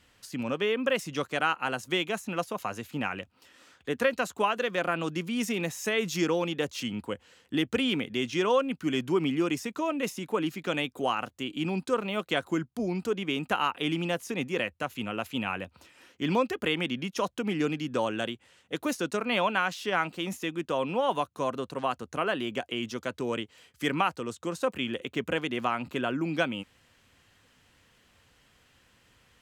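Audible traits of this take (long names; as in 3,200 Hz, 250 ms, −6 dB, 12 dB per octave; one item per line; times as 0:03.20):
background noise floor −65 dBFS
spectral slope −3.0 dB per octave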